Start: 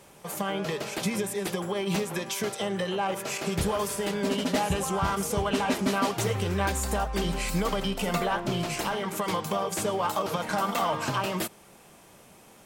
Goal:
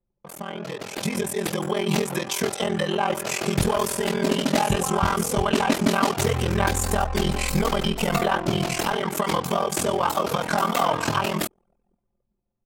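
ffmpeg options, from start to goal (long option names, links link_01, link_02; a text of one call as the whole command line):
ffmpeg -i in.wav -af "aeval=exprs='val(0)*sin(2*PI*21*n/s)':channel_layout=same,dynaudnorm=framelen=120:gausssize=17:maxgain=9.5dB,anlmdn=0.631,volume=-1.5dB" out.wav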